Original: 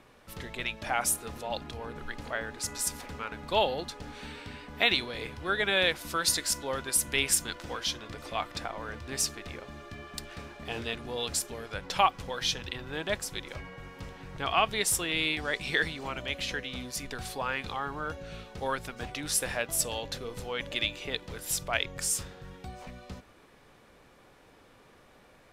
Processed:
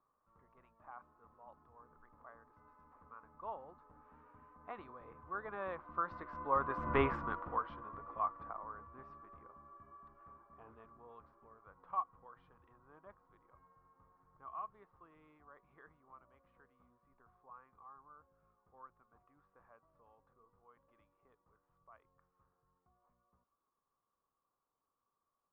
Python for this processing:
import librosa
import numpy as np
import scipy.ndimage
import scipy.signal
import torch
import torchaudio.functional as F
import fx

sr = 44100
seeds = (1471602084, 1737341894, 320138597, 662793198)

y = fx.doppler_pass(x, sr, speed_mps=9, closest_m=1.5, pass_at_s=6.98)
y = fx.ladder_lowpass(y, sr, hz=1200.0, resonance_pct=80)
y = y * 10.0 ** (15.5 / 20.0)